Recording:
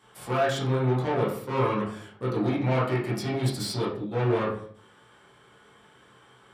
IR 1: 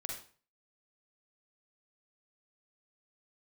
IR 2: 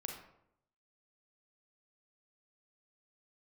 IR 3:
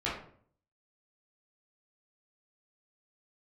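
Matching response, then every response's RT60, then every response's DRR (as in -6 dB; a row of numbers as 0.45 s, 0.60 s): 3; 0.40 s, 0.75 s, 0.55 s; -0.5 dB, 1.5 dB, -8.5 dB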